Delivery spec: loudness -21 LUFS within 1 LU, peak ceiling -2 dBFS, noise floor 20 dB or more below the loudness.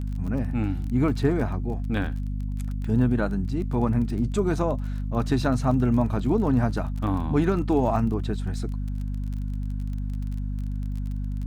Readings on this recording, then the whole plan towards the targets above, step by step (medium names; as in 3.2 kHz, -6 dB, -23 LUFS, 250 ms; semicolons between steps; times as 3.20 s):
tick rate 26 per s; hum 50 Hz; highest harmonic 250 Hz; hum level -26 dBFS; loudness -26.0 LUFS; peak level -10.0 dBFS; loudness target -21.0 LUFS
-> de-click; de-hum 50 Hz, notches 5; trim +5 dB